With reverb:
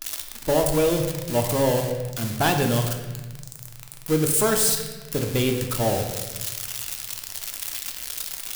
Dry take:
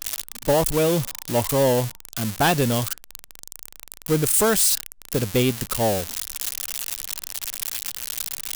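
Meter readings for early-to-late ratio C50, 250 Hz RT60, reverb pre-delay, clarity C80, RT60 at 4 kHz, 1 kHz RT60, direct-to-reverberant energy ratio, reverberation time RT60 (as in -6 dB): 6.0 dB, 1.9 s, 3 ms, 8.0 dB, 1.0 s, 1.1 s, 3.0 dB, 1.2 s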